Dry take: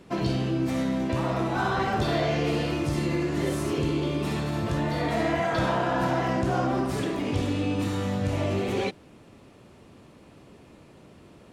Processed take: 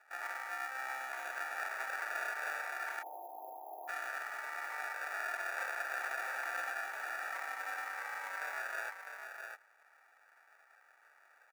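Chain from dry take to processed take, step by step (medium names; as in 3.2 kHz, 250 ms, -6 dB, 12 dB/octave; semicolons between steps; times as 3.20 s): sample-and-hold 42×; high-pass 860 Hz 24 dB/octave; resonant high shelf 2.5 kHz -8 dB, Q 3; delay 654 ms -6.5 dB; spectral selection erased 3.03–3.88 s, 1.1–11 kHz; trim -7 dB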